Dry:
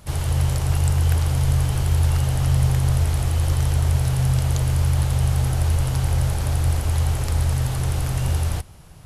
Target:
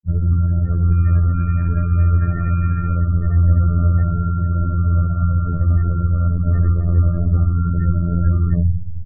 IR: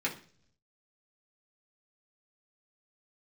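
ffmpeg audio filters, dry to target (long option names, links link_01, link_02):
-filter_complex "[0:a]acrusher=samples=35:mix=1:aa=0.000001,asplit=3[link_01][link_02][link_03];[link_01]afade=type=out:start_time=0.91:duration=0.02[link_04];[link_02]equalizer=frequency=1900:width=0.7:gain=4,afade=type=in:start_time=0.91:duration=0.02,afade=type=out:start_time=2.93:duration=0.02[link_05];[link_03]afade=type=in:start_time=2.93:duration=0.02[link_06];[link_04][link_05][link_06]amix=inputs=3:normalize=0,asplit=2[link_07][link_08];[link_08]adelay=190,highpass=300,lowpass=3400,asoftclip=type=hard:threshold=-21dB,volume=-17dB[link_09];[link_07][link_09]amix=inputs=2:normalize=0[link_10];[1:a]atrim=start_sample=2205,asetrate=31752,aresample=44100[link_11];[link_10][link_11]afir=irnorm=-1:irlink=0,afftfilt=real='re*gte(hypot(re,im),0.2)':imag='im*gte(hypot(re,im),0.2)':win_size=1024:overlap=0.75,acompressor=threshold=-19dB:ratio=10,bass=frequency=250:gain=12,treble=frequency=4000:gain=6,dynaudnorm=framelen=100:gausssize=7:maxgain=15dB,afftfilt=real='hypot(re,im)*cos(PI*b)':imag='0':win_size=2048:overlap=0.75,bandreject=frequency=115.6:width_type=h:width=4,bandreject=frequency=231.2:width_type=h:width=4,bandreject=frequency=346.8:width_type=h:width=4,bandreject=frequency=462.4:width_type=h:width=4,bandreject=frequency=578:width_type=h:width=4,bandreject=frequency=693.6:width_type=h:width=4"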